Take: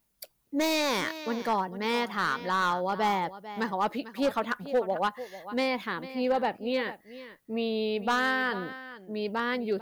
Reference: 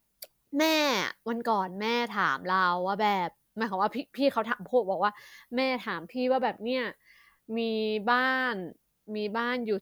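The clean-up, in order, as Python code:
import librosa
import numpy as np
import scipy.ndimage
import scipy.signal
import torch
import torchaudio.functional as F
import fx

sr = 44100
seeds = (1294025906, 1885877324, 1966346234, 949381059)

y = fx.fix_declip(x, sr, threshold_db=-20.0)
y = fx.fix_echo_inverse(y, sr, delay_ms=446, level_db=-15.0)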